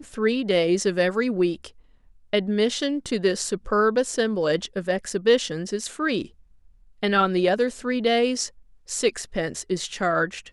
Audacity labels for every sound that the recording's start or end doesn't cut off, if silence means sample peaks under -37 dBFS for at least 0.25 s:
2.330000	6.260000	sound
7.030000	8.480000	sound